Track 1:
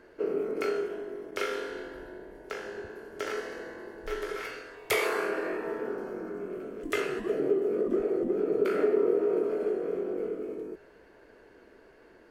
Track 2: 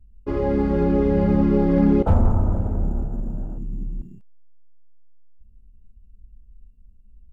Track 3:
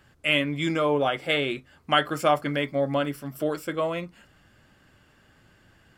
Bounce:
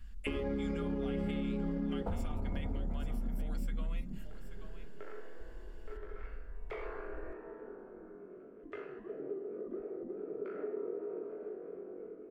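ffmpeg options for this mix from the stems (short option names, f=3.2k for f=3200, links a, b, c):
-filter_complex "[0:a]lowpass=1.6k,adelay=1800,volume=-14dB[a];[1:a]alimiter=limit=-18.5dB:level=0:latency=1:release=186,volume=0dB,asplit=2[b][c];[c]volume=-20dB[d];[2:a]tiltshelf=f=810:g=-8,acompressor=threshold=-23dB:ratio=6,volume=-14.5dB,asplit=3[e][f][g];[f]volume=-18.5dB[h];[g]apad=whole_len=622192[i];[a][i]sidechaincompress=threshold=-59dB:ratio=8:attack=16:release=589[j];[b][e]amix=inputs=2:normalize=0,aecho=1:1:4.2:0.45,acompressor=threshold=-32dB:ratio=3,volume=0dB[k];[d][h]amix=inputs=2:normalize=0,aecho=0:1:834:1[l];[j][k][l]amix=inputs=3:normalize=0,acompressor=threshold=-31dB:ratio=6"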